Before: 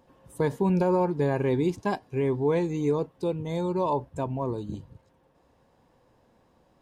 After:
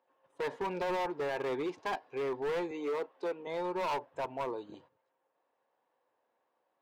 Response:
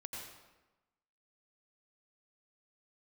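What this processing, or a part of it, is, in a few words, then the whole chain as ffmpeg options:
walkie-talkie: -filter_complex "[0:a]highpass=550,lowpass=2800,equalizer=frequency=200:width_type=o:width=0.41:gain=-5,asoftclip=type=hard:threshold=-31.5dB,agate=range=-12dB:threshold=-60dB:ratio=16:detection=peak,asettb=1/sr,asplit=3[link_01][link_02][link_03];[link_01]atrim=end=2.714[link_04];[link_02]atrim=start=2.71:end=3.47,asetpts=PTS-STARTPTS,afade=type=in:duration=0.004:curve=qsin,afade=type=out:start_time=0.756:duration=0.004:curve=qsin,highpass=frequency=200:width=0.5412,highpass=frequency=200:width=1.3066[link_05];[link_03]atrim=start=3.466[link_06];[link_04][link_05]acrossfade=duration=0.004:curve1=hsin:curve2=qsin[link_07];[link_07][link_06]acrossfade=duration=0.004:curve1=qsin:curve2=hsin,volume=1dB"

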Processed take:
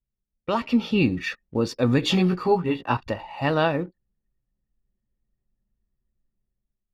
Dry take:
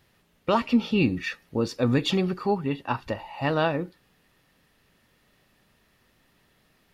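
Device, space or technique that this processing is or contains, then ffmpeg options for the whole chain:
voice memo with heavy noise removal: -filter_complex "[0:a]asettb=1/sr,asplit=3[link_01][link_02][link_03];[link_01]atrim=end=2.014[link_04];[link_02]atrim=start=2.01:end=2.97,asetpts=PTS-STARTPTS,afade=type=in:duration=0.004:curve=qsin,afade=type=out:start_time=0.956:duration=0.004:curve=qsin,asplit=2[link_05][link_06];[link_06]adelay=17,volume=-2.5dB[link_07];[link_05][link_07]amix=inputs=2:normalize=0,atrim=end_sample=42336[link_08];[link_03]atrim=start=2.966[link_09];[link_04][link_08]acrossfade=duration=0.004:curve1=hsin:curve2=qsin[link_10];[link_10][link_09]acrossfade=duration=0.004:curve1=qsin:curve2=hsin,anlmdn=0.0158,dynaudnorm=framelen=180:gausssize=7:maxgain=8dB,volume=-5dB"

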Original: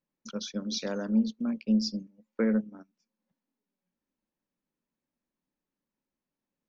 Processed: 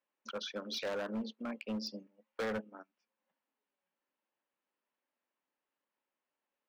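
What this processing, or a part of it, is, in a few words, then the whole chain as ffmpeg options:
megaphone: -af "highpass=600,lowpass=2500,equalizer=frequency=2900:width_type=o:width=0.24:gain=4.5,asoftclip=type=hard:threshold=-38dB,volume=5dB"

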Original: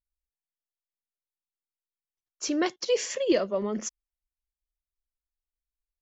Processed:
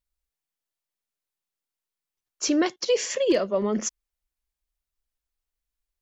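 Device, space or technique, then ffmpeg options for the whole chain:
clipper into limiter: -af "asoftclip=type=hard:threshold=-15dB,alimiter=limit=-19dB:level=0:latency=1:release=396,volume=5.5dB"

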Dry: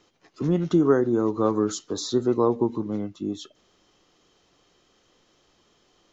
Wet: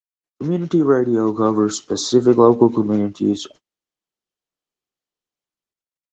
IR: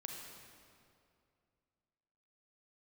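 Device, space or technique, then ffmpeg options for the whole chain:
video call: -filter_complex "[0:a]asplit=3[link_01][link_02][link_03];[link_01]afade=type=out:start_time=1:duration=0.02[link_04];[link_02]adynamicequalizer=threshold=0.0141:dfrequency=490:dqfactor=3:tfrequency=490:tqfactor=3:attack=5:release=100:ratio=0.375:range=2.5:mode=cutabove:tftype=bell,afade=type=in:start_time=1:duration=0.02,afade=type=out:start_time=1.85:duration=0.02[link_05];[link_03]afade=type=in:start_time=1.85:duration=0.02[link_06];[link_04][link_05][link_06]amix=inputs=3:normalize=0,highpass=100,dynaudnorm=framelen=440:gausssize=5:maxgain=13.5dB,agate=range=-45dB:threshold=-42dB:ratio=16:detection=peak,volume=2dB" -ar 48000 -c:a libopus -b:a 16k

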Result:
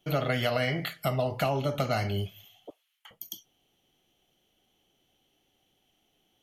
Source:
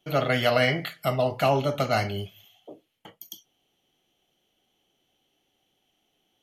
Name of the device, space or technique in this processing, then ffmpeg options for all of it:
ASMR close-microphone chain: -filter_complex "[0:a]asettb=1/sr,asplit=3[link_01][link_02][link_03];[link_01]atrim=end=2.704[link_04];[link_02]atrim=start=2.7:end=3.11,asetpts=PTS-STARTPTS,afade=type=in:duration=0.004:curve=qsin,afade=type=out:start_time=0.406:duration=0.004:curve=qsin,highpass=frequency=1100:width=0.5412,highpass=frequency=1100:width=1.3066[link_05];[link_03]atrim=start=3.106[link_06];[link_04][link_05]acrossfade=duration=0.004:curve1=hsin:curve2=qsin[link_07];[link_07][link_06]acrossfade=duration=0.004:curve1=qsin:curve2=hsin,lowshelf=frequency=140:gain=6.5,acompressor=threshold=-24dB:ratio=6,highshelf=frequency=10000:gain=3.5"

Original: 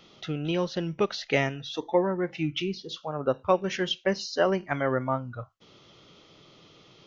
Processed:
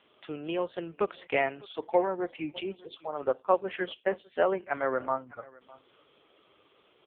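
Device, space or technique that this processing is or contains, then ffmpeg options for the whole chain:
satellite phone: -filter_complex "[0:a]asettb=1/sr,asplit=3[link_01][link_02][link_03];[link_01]atrim=end=0.794[link_04];[link_02]atrim=start=0.79:end=2.96,asetpts=PTS-STARTPTS,afade=type=in:duration=0.004:curve=qsin,afade=type=out:start_time=2.166:duration=0.004:curve=qsin,adynamicequalizer=threshold=0.00631:dfrequency=720:dqfactor=5.6:tfrequency=720:tqfactor=5.6:attack=5:release=100:ratio=0.375:range=3:mode=boostabove:tftype=bell[link_05];[link_03]atrim=start=2.956[link_06];[link_04][link_05]acrossfade=duration=0.004:curve1=hsin:curve2=qsin[link_07];[link_07][link_06]acrossfade=duration=0.004:curve1=qsin:curve2=hsin,highpass=370,lowpass=3100,aecho=1:1:604:0.075" -ar 8000 -c:a libopencore_amrnb -b:a 5150

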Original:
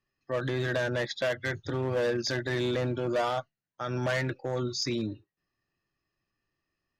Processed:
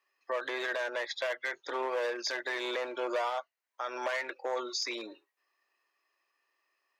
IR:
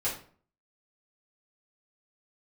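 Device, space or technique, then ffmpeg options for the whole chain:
laptop speaker: -af "highpass=frequency=440:width=0.5412,highpass=frequency=440:width=1.3066,equalizer=frequency=1000:width_type=o:width=0.43:gain=7.5,equalizer=frequency=2200:width_type=o:width=0.49:gain=6,alimiter=level_in=4dB:limit=-24dB:level=0:latency=1:release=442,volume=-4dB,volume=4dB"

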